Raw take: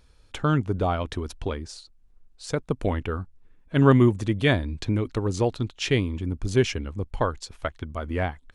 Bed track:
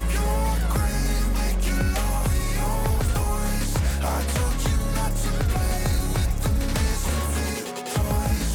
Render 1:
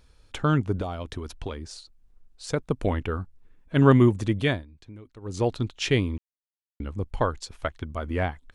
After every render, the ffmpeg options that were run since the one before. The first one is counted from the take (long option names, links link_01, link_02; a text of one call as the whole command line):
ffmpeg -i in.wav -filter_complex "[0:a]asettb=1/sr,asplit=3[link_01][link_02][link_03];[link_01]atrim=end=0.814[link_04];[link_02]atrim=start=0.81:end=1.71,asetpts=PTS-STARTPTS,afade=type=in:duration=0.004:curve=qsin,afade=type=out:start_time=0.896:duration=0.004:curve=qsin,acrossover=split=760|3900[link_05][link_06][link_07];[link_05]acompressor=threshold=-31dB:ratio=4[link_08];[link_06]acompressor=threshold=-40dB:ratio=4[link_09];[link_07]acompressor=threshold=-45dB:ratio=4[link_10];[link_08][link_09][link_10]amix=inputs=3:normalize=0[link_11];[link_03]atrim=start=1.706[link_12];[link_04][link_11]acrossfade=duration=0.004:curve1=hsin:curve2=qsin[link_13];[link_13][link_12]acrossfade=duration=0.004:curve1=qsin:curve2=hsin,asplit=5[link_14][link_15][link_16][link_17][link_18];[link_14]atrim=end=4.66,asetpts=PTS-STARTPTS,afade=type=out:start_time=4.38:duration=0.28:silence=0.105925[link_19];[link_15]atrim=start=4.66:end=5.2,asetpts=PTS-STARTPTS,volume=-19.5dB[link_20];[link_16]atrim=start=5.2:end=6.18,asetpts=PTS-STARTPTS,afade=type=in:duration=0.28:silence=0.105925,afade=type=out:start_time=0.976:duration=0.004:curve=hsin[link_21];[link_17]atrim=start=6.18:end=6.8,asetpts=PTS-STARTPTS,volume=0[link_22];[link_18]atrim=start=6.8,asetpts=PTS-STARTPTS,afade=type=in:duration=0.004:curve=hsin[link_23];[link_19][link_20][link_21][link_22][link_23]concat=n=5:v=0:a=1" out.wav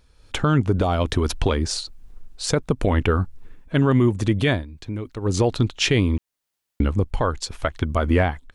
ffmpeg -i in.wav -af "dynaudnorm=framelen=110:gausssize=5:maxgain=15.5dB,alimiter=limit=-9.5dB:level=0:latency=1:release=120" out.wav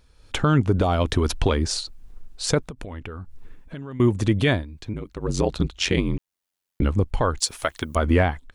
ffmpeg -i in.wav -filter_complex "[0:a]asettb=1/sr,asplit=3[link_01][link_02][link_03];[link_01]atrim=end=2.634[link_04];[link_02]atrim=start=2.63:end=4,asetpts=PTS-STARTPTS,afade=type=in:duration=0.004:curve=qsin,afade=type=out:start_time=1.366:duration=0.004:curve=qsin,acompressor=threshold=-31dB:ratio=12:attack=3.2:release=140:knee=1:detection=peak[link_05];[link_03]atrim=start=3.996[link_06];[link_04][link_05]acrossfade=duration=0.004:curve1=hsin:curve2=qsin[link_07];[link_07][link_06]acrossfade=duration=0.004:curve1=qsin:curve2=hsin,asettb=1/sr,asplit=3[link_08][link_09][link_10];[link_08]atrim=end=4.934[link_11];[link_09]atrim=start=4.93:end=6.82,asetpts=PTS-STARTPTS,afade=type=in:duration=0.004:curve=qsin,afade=type=out:start_time=1.886:duration=0.004:curve=qsin,aeval=exprs='val(0)*sin(2*PI*45*n/s)':channel_layout=same[link_12];[link_10]atrim=start=6.816[link_13];[link_11][link_12]acrossfade=duration=0.004:curve1=hsin:curve2=qsin[link_14];[link_14][link_13]acrossfade=duration=0.004:curve1=qsin:curve2=hsin,asplit=3[link_15][link_16][link_17];[link_15]afade=type=out:start_time=7.38:duration=0.02[link_18];[link_16]aemphasis=mode=production:type=bsi,afade=type=in:start_time=7.38:duration=0.02,afade=type=out:start_time=7.95:duration=0.02[link_19];[link_17]afade=type=in:start_time=7.95:duration=0.02[link_20];[link_18][link_19][link_20]amix=inputs=3:normalize=0" out.wav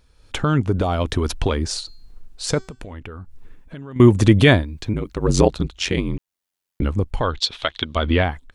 ffmpeg -i in.wav -filter_complex "[0:a]asettb=1/sr,asplit=3[link_01][link_02][link_03];[link_01]atrim=end=1.804[link_04];[link_02]atrim=start=1.8:end=2.94,asetpts=PTS-STARTPTS,afade=type=in:duration=0.004:curve=qsin,afade=type=out:start_time=1.136:duration=0.004:curve=qsin,bandreject=frequency=382.3:width_type=h:width=4,bandreject=frequency=764.6:width_type=h:width=4,bandreject=frequency=1146.9:width_type=h:width=4,bandreject=frequency=1529.2:width_type=h:width=4,bandreject=frequency=1911.5:width_type=h:width=4,bandreject=frequency=2293.8:width_type=h:width=4,bandreject=frequency=2676.1:width_type=h:width=4,bandreject=frequency=3058.4:width_type=h:width=4,bandreject=frequency=3440.7:width_type=h:width=4,bandreject=frequency=3823:width_type=h:width=4,bandreject=frequency=4205.3:width_type=h:width=4,bandreject=frequency=4587.6:width_type=h:width=4,bandreject=frequency=4969.9:width_type=h:width=4,bandreject=frequency=5352.2:width_type=h:width=4,bandreject=frequency=5734.5:width_type=h:width=4,bandreject=frequency=6116.8:width_type=h:width=4,bandreject=frequency=6499.1:width_type=h:width=4,bandreject=frequency=6881.4:width_type=h:width=4,bandreject=frequency=7263.7:width_type=h:width=4,bandreject=frequency=7646:width_type=h:width=4,bandreject=frequency=8028.3:width_type=h:width=4,bandreject=frequency=8410.6:width_type=h:width=4[link_05];[link_03]atrim=start=2.936[link_06];[link_04][link_05]acrossfade=duration=0.004:curve1=hsin:curve2=qsin[link_07];[link_07][link_06]acrossfade=duration=0.004:curve1=qsin:curve2=hsin,asettb=1/sr,asplit=3[link_08][link_09][link_10];[link_08]atrim=end=7.234[link_11];[link_09]atrim=start=7.23:end=8.24,asetpts=PTS-STARTPTS,afade=type=in:duration=0.004:curve=qsin,afade=type=out:start_time=1.006:duration=0.004:curve=qsin,lowpass=frequency=3600:width_type=q:width=5[link_12];[link_10]atrim=start=8.236[link_13];[link_11][link_12]acrossfade=duration=0.004:curve1=hsin:curve2=qsin[link_14];[link_14][link_13]acrossfade=duration=0.004:curve1=qsin:curve2=hsin,asplit=3[link_15][link_16][link_17];[link_15]atrim=end=3.962[link_18];[link_16]atrim=start=3.958:end=5.482,asetpts=PTS-STARTPTS,volume=7.5dB[link_19];[link_17]atrim=start=5.478[link_20];[link_18][link_19]acrossfade=duration=0.004:curve1=hsin:curve2=hsin[link_21];[link_21][link_20]acrossfade=duration=0.004:curve1=hsin:curve2=hsin" out.wav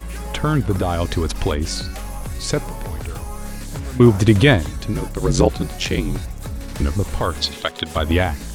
ffmpeg -i in.wav -i bed.wav -filter_complex "[1:a]volume=-6.5dB[link_01];[0:a][link_01]amix=inputs=2:normalize=0" out.wav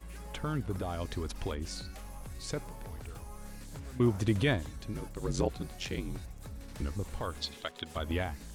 ffmpeg -i in.wav -af "volume=-15.5dB" out.wav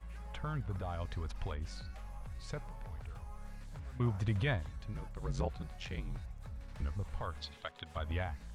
ffmpeg -i in.wav -af "lowpass=frequency=1600:poles=1,equalizer=frequency=320:width=1.1:gain=-13.5" out.wav